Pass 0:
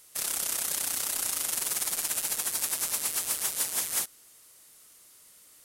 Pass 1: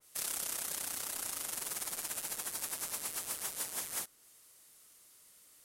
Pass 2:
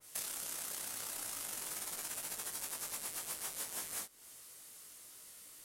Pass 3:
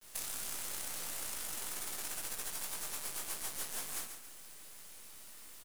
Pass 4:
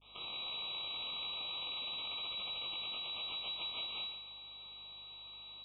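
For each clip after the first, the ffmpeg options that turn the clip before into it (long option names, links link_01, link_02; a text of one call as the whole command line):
ffmpeg -i in.wav -af "adynamicequalizer=threshold=0.00398:dfrequency=2000:dqfactor=0.7:tfrequency=2000:tqfactor=0.7:attack=5:release=100:ratio=0.375:range=2:mode=cutabove:tftype=highshelf,volume=-5.5dB" out.wav
ffmpeg -i in.wav -af "acompressor=threshold=-44dB:ratio=5,flanger=delay=18:depth=2:speed=2.1,volume=9.5dB" out.wav
ffmpeg -i in.wav -filter_complex "[0:a]acrusher=bits=7:dc=4:mix=0:aa=0.000001,asplit=2[link_01][link_02];[link_02]aeval=exprs='(mod(37.6*val(0)+1,2)-1)/37.6':channel_layout=same,volume=-4.5dB[link_03];[link_01][link_03]amix=inputs=2:normalize=0,aecho=1:1:139|278|417|556:0.398|0.151|0.0575|0.0218" out.wav
ffmpeg -i in.wav -af "lowpass=frequency=3300:width_type=q:width=0.5098,lowpass=frequency=3300:width_type=q:width=0.6013,lowpass=frequency=3300:width_type=q:width=0.9,lowpass=frequency=3300:width_type=q:width=2.563,afreqshift=-3900,aeval=exprs='val(0)+0.0002*(sin(2*PI*50*n/s)+sin(2*PI*2*50*n/s)/2+sin(2*PI*3*50*n/s)/3+sin(2*PI*4*50*n/s)/4+sin(2*PI*5*50*n/s)/5)':channel_layout=same,asuperstop=centerf=1700:order=20:qfactor=1.8,volume=3.5dB" out.wav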